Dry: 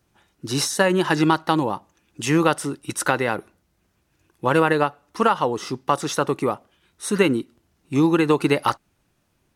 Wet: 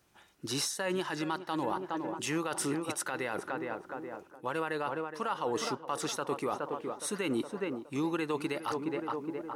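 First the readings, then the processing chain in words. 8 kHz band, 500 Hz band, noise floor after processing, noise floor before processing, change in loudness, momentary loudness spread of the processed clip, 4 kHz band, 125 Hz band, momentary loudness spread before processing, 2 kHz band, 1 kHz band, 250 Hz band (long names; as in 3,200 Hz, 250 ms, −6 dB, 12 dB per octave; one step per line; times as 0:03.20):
−8.0 dB, −12.0 dB, −58 dBFS, −69 dBFS, −13.0 dB, 5 LU, −9.5 dB, −16.0 dB, 9 LU, −12.5 dB, −12.0 dB, −12.5 dB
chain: low-shelf EQ 280 Hz −9 dB
tape delay 416 ms, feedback 68%, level −12 dB, low-pass 1,200 Hz
reversed playback
downward compressor 5 to 1, threshold −30 dBFS, peak gain reduction 15 dB
reversed playback
brickwall limiter −23 dBFS, peak gain reduction 7 dB
level +1 dB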